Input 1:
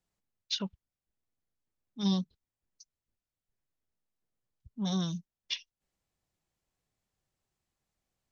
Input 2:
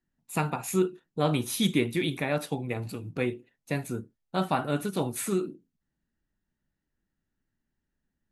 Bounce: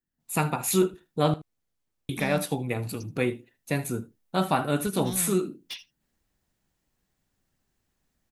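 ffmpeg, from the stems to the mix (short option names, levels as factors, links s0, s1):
-filter_complex "[0:a]acompressor=threshold=0.0224:ratio=6,asoftclip=type=tanh:threshold=0.0133,adelay=200,volume=0.562,asplit=2[s0][s1];[s1]volume=0.0794[s2];[1:a]highshelf=f=8900:g=10,volume=0.398,asplit=3[s3][s4][s5];[s3]atrim=end=1.34,asetpts=PTS-STARTPTS,afade=t=out:st=1.336:d=0.004:c=hsin[s6];[s4]atrim=start=1.34:end=2.09,asetpts=PTS-STARTPTS,volume=0[s7];[s5]atrim=start=2.09,asetpts=PTS-STARTPTS,afade=t=in:d=0.004:c=hsin[s8];[s6][s7][s8]concat=n=3:v=0:a=1,asplit=2[s9][s10];[s10]volume=0.126[s11];[s2][s11]amix=inputs=2:normalize=0,aecho=0:1:78:1[s12];[s0][s9][s12]amix=inputs=3:normalize=0,dynaudnorm=f=100:g=5:m=3.35"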